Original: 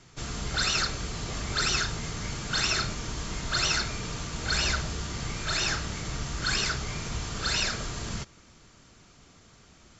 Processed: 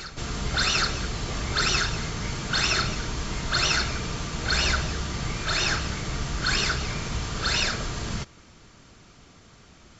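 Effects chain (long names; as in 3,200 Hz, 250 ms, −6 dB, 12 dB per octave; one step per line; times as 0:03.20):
Bessel low-pass filter 6,300 Hz
on a send: backwards echo 775 ms −14 dB
on the sum: level +4 dB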